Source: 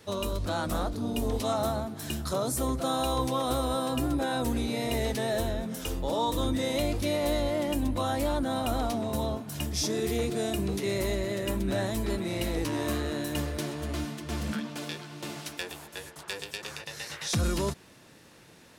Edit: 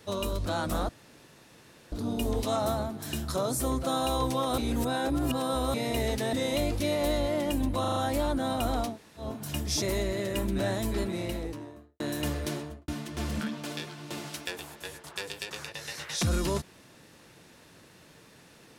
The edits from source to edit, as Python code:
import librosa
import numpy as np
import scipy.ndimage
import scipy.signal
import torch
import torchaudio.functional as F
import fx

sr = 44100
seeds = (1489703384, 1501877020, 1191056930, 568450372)

y = fx.studio_fade_out(x, sr, start_s=12.09, length_s=1.03)
y = fx.studio_fade_out(y, sr, start_s=13.65, length_s=0.35)
y = fx.edit(y, sr, fx.insert_room_tone(at_s=0.89, length_s=1.03),
    fx.reverse_span(start_s=3.55, length_s=1.16),
    fx.cut(start_s=5.3, length_s=1.25),
    fx.stutter(start_s=8.02, slice_s=0.04, count=5),
    fx.room_tone_fill(start_s=8.97, length_s=0.33, crossfade_s=0.16),
    fx.cut(start_s=9.88, length_s=1.06), tone=tone)